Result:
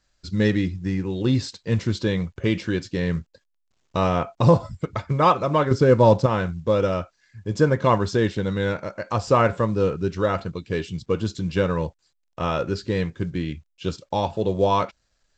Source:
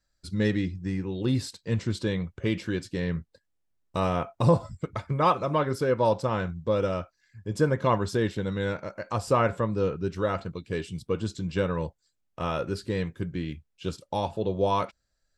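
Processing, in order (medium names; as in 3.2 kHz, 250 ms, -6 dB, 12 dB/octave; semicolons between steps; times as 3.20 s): 5.71–6.26 s: bass shelf 350 Hz +9 dB; trim +5 dB; A-law 128 kbps 16 kHz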